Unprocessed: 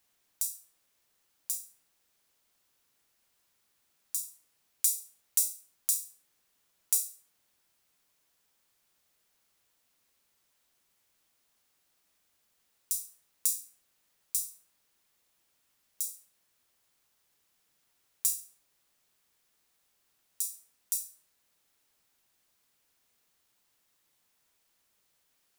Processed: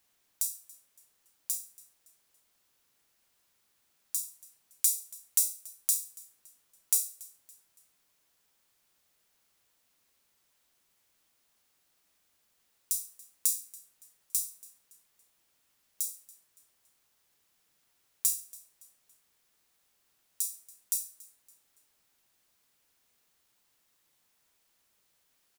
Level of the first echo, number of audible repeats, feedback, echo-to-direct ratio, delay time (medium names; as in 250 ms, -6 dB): -22.0 dB, 2, 40%, -21.5 dB, 282 ms